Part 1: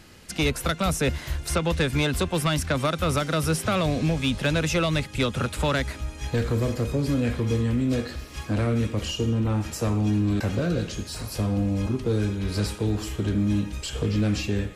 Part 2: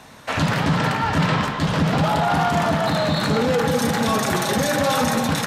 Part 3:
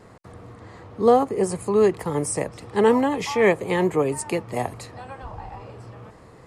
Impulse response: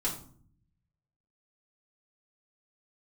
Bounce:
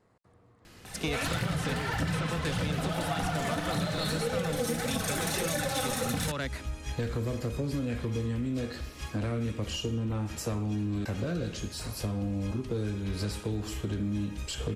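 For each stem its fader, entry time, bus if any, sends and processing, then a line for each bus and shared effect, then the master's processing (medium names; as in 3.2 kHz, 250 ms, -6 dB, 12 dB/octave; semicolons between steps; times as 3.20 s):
-3.5 dB, 0.65 s, no send, none
-7.5 dB, 0.85 s, send -3.5 dB, fifteen-band graphic EQ 250 Hz -9 dB, 1 kHz -9 dB, 10 kHz +8 dB; phaser 1.7 Hz, delay 4.8 ms, feedback 64%
-19.0 dB, 0.00 s, no send, none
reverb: on, RT60 0.50 s, pre-delay 4 ms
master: compression 6:1, threshold -28 dBFS, peak gain reduction 13 dB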